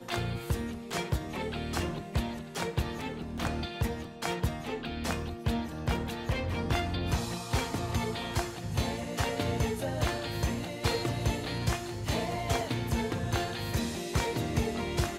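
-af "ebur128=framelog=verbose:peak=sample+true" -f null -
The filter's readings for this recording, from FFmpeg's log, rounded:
Integrated loudness:
  I:         -32.8 LUFS
  Threshold: -42.8 LUFS
Loudness range:
  LRA:         2.7 LU
  Threshold: -52.8 LUFS
  LRA low:   -34.5 LUFS
  LRA high:  -31.8 LUFS
Sample peak:
  Peak:      -14.9 dBFS
True peak:
  Peak:      -14.8 dBFS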